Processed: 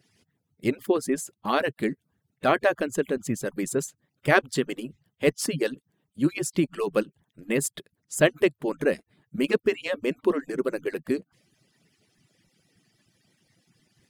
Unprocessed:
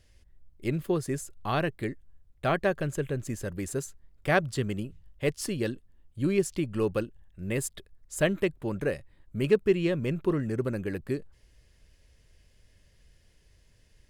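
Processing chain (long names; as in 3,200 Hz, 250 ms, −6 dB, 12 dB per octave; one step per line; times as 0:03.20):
harmonic-percussive split with one part muted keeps percussive
low shelf with overshoot 100 Hz −14 dB, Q 1.5
level +5.5 dB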